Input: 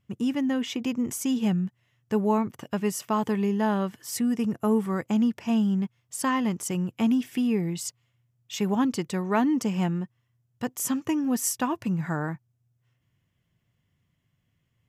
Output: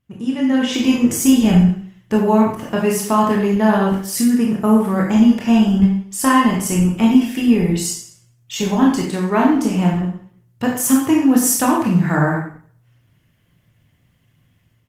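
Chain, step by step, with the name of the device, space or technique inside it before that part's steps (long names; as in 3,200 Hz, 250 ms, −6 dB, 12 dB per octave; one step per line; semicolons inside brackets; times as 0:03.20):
speakerphone in a meeting room (convolution reverb RT60 0.55 s, pre-delay 20 ms, DRR −2 dB; far-end echo of a speakerphone 90 ms, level −11 dB; automatic gain control gain up to 12.5 dB; level −1 dB; Opus 24 kbit/s 48,000 Hz)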